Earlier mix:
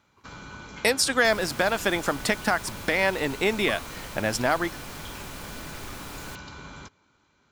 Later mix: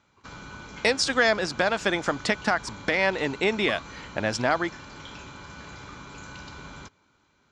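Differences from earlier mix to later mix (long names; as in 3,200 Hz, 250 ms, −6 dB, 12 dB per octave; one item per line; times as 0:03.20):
speech: add low-pass filter 6,800 Hz 24 dB per octave
second sound: muted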